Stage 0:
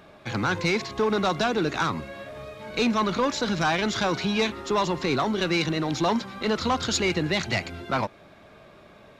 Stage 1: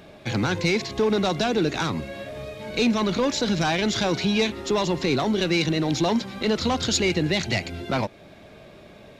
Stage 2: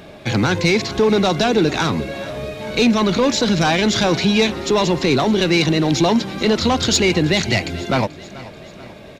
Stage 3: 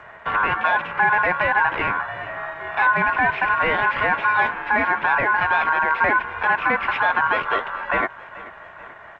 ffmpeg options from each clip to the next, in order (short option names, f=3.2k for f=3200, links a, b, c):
-filter_complex "[0:a]equalizer=f=1.2k:t=o:w=1:g=-8.5,asplit=2[a][b];[b]alimiter=limit=-22dB:level=0:latency=1:release=289,volume=-1dB[c];[a][c]amix=inputs=2:normalize=0"
-af "aeval=exprs='0.316*(cos(1*acos(clip(val(0)/0.316,-1,1)))-cos(1*PI/2))+0.00891*(cos(5*acos(clip(val(0)/0.316,-1,1)))-cos(5*PI/2))':c=same,aecho=1:1:435|870|1305|1740:0.126|0.0655|0.034|0.0177,volume=6dB"
-af "aeval=exprs='val(0)*sin(2*PI*1400*n/s)':c=same,highpass=f=170:t=q:w=0.5412,highpass=f=170:t=q:w=1.307,lowpass=f=2.8k:t=q:w=0.5176,lowpass=f=2.8k:t=q:w=0.7071,lowpass=f=2.8k:t=q:w=1.932,afreqshift=-140" -ar 16000 -c:a g722